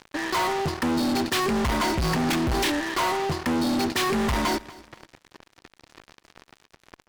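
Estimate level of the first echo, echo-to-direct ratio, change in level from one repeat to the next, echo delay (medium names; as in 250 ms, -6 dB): -21.0 dB, -20.5 dB, -11.0 dB, 244 ms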